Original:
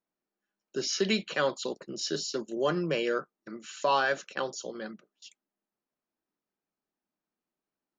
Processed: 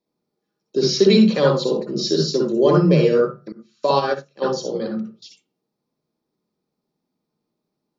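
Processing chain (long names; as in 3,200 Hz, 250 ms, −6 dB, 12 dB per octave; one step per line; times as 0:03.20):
convolution reverb RT60 0.30 s, pre-delay 53 ms, DRR 0 dB
0:03.52–0:04.42: expander for the loud parts 2.5 to 1, over −31 dBFS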